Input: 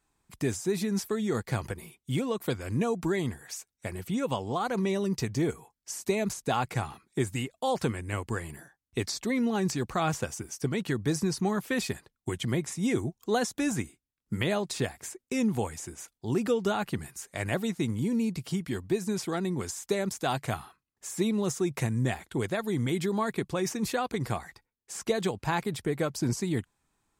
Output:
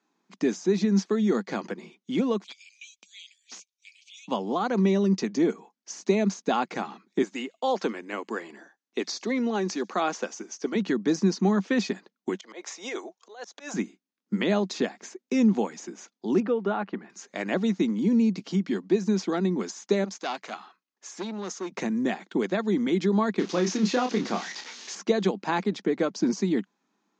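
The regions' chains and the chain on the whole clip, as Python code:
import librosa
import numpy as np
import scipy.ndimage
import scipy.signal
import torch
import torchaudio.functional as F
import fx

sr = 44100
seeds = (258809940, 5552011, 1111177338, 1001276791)

y = fx.chain(x, sr, fx.cheby_ripple_highpass(hz=2300.0, ripple_db=3),
    fx.transient(attack_db=-1, sustain_db=3),
    fx.overflow_wrap(gain_db=33.0), at=(2.44, 4.28))
y = fx.chain(y, sr, fx.highpass(hz=320.0, slope=12),
    fx.echo_wet_highpass(ms=71, feedback_pct=31, hz=5400.0, wet_db=-19.5), at=(7.22, 10.75))
y = fx.chain(y, sr, fx.highpass(hz=500.0, slope=24),
    fx.over_compress(threshold_db=-36.0, ratio=-1.0),
    fx.auto_swell(attack_ms=133.0), at=(12.35, 13.74))
y = fx.chain(y, sr, fx.lowpass(hz=1900.0, slope=12),
    fx.low_shelf(hz=280.0, db=-10.5), at=(16.4, 17.1))
y = fx.chain(y, sr, fx.highpass(hz=760.0, slope=6),
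    fx.transformer_sat(knee_hz=2500.0), at=(20.04, 21.72))
y = fx.chain(y, sr, fx.crossing_spikes(level_db=-21.0),
    fx.air_absorb(metres=87.0),
    fx.doubler(ms=28.0, db=-6.0), at=(23.39, 24.95))
y = scipy.signal.sosfilt(scipy.signal.cheby1(5, 1.0, [190.0, 6600.0], 'bandpass', fs=sr, output='sos'), y)
y = fx.low_shelf(y, sr, hz=390.0, db=8.0)
y = y * 10.0 ** (1.5 / 20.0)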